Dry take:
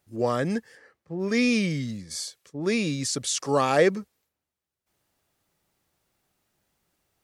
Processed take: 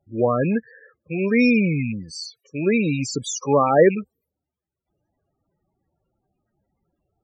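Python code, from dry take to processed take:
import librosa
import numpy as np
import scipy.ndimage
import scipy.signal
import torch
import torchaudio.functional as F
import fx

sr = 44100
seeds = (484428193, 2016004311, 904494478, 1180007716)

y = fx.rattle_buzz(x, sr, strikes_db=-33.0, level_db=-25.0)
y = fx.spec_topn(y, sr, count=16)
y = y * librosa.db_to_amplitude(6.0)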